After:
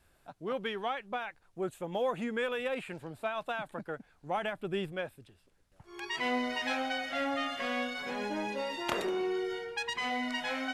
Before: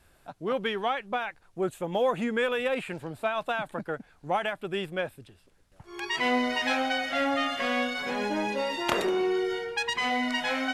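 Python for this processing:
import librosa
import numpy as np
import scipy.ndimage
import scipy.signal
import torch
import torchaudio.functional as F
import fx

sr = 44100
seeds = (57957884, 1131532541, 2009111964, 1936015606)

y = fx.low_shelf(x, sr, hz=410.0, db=7.0, at=(4.37, 4.92))
y = F.gain(torch.from_numpy(y), -6.0).numpy()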